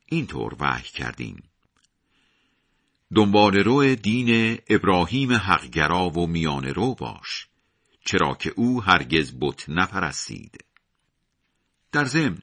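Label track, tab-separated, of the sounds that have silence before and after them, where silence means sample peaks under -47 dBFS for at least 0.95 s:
3.110000	10.770000	sound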